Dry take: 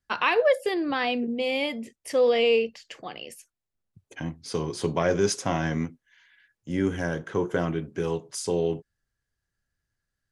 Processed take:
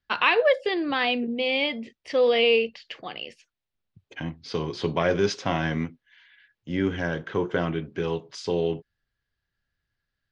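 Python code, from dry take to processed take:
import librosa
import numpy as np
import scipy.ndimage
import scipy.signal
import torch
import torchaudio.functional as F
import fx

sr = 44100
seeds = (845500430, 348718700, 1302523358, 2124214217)

y = scipy.signal.sosfilt(scipy.signal.butter(4, 4000.0, 'lowpass', fs=sr, output='sos'), x)
y = fx.high_shelf(y, sr, hz=2900.0, db=10.5)
y = fx.quant_float(y, sr, bits=8)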